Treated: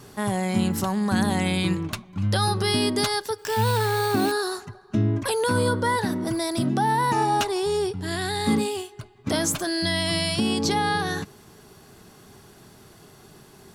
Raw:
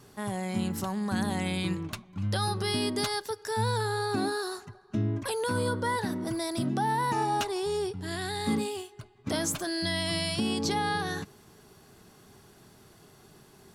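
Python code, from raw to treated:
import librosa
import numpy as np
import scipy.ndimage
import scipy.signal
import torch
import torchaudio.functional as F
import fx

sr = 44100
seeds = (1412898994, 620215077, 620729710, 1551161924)

p1 = fx.rider(x, sr, range_db=10, speed_s=2.0)
p2 = x + (p1 * librosa.db_to_amplitude(0.0))
y = fx.sample_hold(p2, sr, seeds[0], rate_hz=13000.0, jitter_pct=0, at=(3.38, 4.32))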